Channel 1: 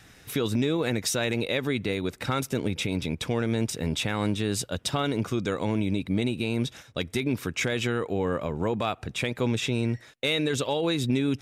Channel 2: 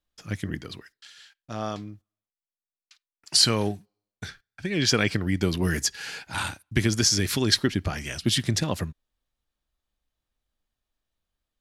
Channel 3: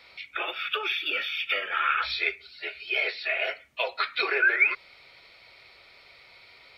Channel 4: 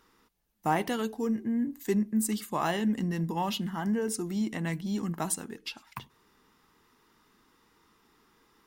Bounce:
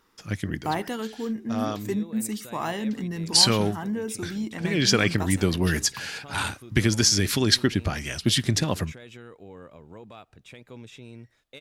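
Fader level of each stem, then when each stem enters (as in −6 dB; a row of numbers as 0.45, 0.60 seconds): −17.5 dB, +1.5 dB, muted, −0.5 dB; 1.30 s, 0.00 s, muted, 0.00 s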